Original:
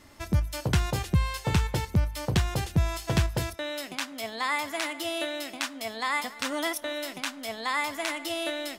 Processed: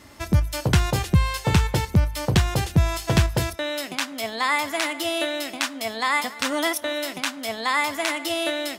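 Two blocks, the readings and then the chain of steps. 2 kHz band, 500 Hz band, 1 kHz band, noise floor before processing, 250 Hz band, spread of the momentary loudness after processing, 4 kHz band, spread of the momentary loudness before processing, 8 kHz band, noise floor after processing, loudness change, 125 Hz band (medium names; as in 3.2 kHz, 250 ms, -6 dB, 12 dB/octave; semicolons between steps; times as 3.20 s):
+6.0 dB, +6.0 dB, +6.0 dB, -45 dBFS, +6.0 dB, 6 LU, +6.0 dB, 6 LU, +6.0 dB, -40 dBFS, +6.0 dB, +6.0 dB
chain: high-pass 42 Hz; trim +6 dB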